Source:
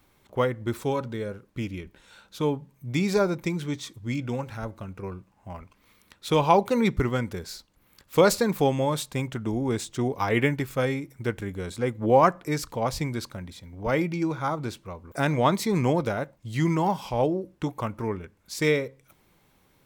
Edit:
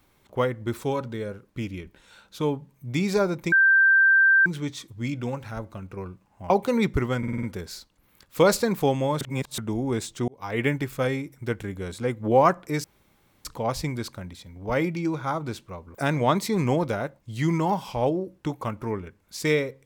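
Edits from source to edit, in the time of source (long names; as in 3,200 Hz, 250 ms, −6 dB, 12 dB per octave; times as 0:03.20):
0:03.52: insert tone 1,570 Hz −14 dBFS 0.94 s
0:05.56–0:06.53: remove
0:07.21: stutter 0.05 s, 6 plays
0:08.99–0:09.36: reverse
0:10.06–0:10.50: fade in
0:12.62: splice in room tone 0.61 s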